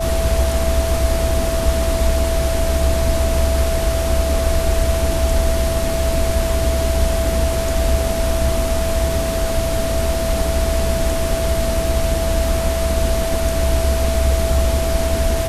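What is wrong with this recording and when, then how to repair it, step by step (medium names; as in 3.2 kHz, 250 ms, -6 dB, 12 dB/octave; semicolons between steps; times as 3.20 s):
whine 660 Hz -21 dBFS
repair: band-stop 660 Hz, Q 30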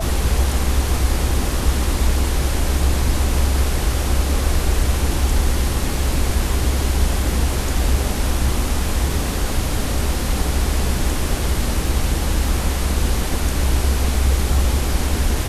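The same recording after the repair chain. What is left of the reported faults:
nothing left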